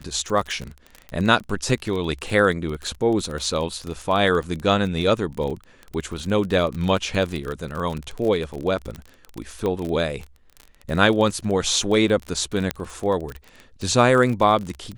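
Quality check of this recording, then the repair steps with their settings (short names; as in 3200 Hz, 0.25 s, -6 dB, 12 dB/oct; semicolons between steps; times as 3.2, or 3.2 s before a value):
crackle 26/s -26 dBFS
9.66 pop -14 dBFS
12.71 pop -7 dBFS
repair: de-click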